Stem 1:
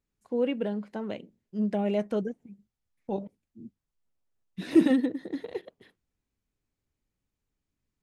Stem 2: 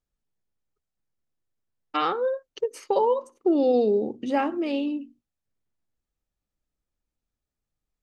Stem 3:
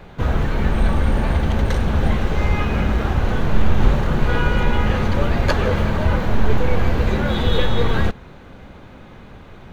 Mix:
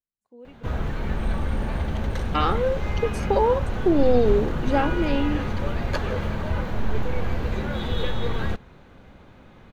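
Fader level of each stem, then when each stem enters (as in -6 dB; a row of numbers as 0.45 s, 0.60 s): -19.0 dB, +1.5 dB, -8.0 dB; 0.00 s, 0.40 s, 0.45 s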